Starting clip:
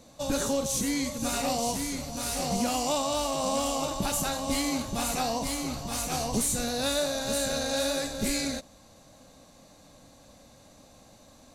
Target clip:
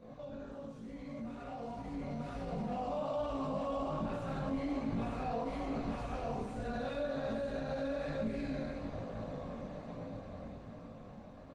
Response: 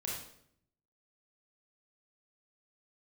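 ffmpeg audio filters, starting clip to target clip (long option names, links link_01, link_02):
-filter_complex "[0:a]asplit=3[link_01][link_02][link_03];[link_01]afade=type=out:start_time=5.26:duration=0.02[link_04];[link_02]equalizer=frequency=160:width_type=o:width=1:gain=-6.5,afade=type=in:start_time=5.26:duration=0.02,afade=type=out:start_time=6.64:duration=0.02[link_05];[link_03]afade=type=in:start_time=6.64:duration=0.02[link_06];[link_04][link_05][link_06]amix=inputs=3:normalize=0,bandreject=frequency=850:width=19[link_07];[1:a]atrim=start_sample=2205,afade=type=out:start_time=0.19:duration=0.01,atrim=end_sample=8820,asetrate=52920,aresample=44100[link_08];[link_07][link_08]afir=irnorm=-1:irlink=0,acompressor=threshold=-43dB:ratio=8,aecho=1:1:95|166|349:0.422|0.2|0.266,flanger=delay=17.5:depth=4.4:speed=1.2,alimiter=level_in=18dB:limit=-24dB:level=0:latency=1:release=53,volume=-18dB,dynaudnorm=framelen=200:gausssize=21:maxgain=9.5dB,lowpass=1800,volume=6.5dB" -ar 48000 -c:a libopus -b:a 24k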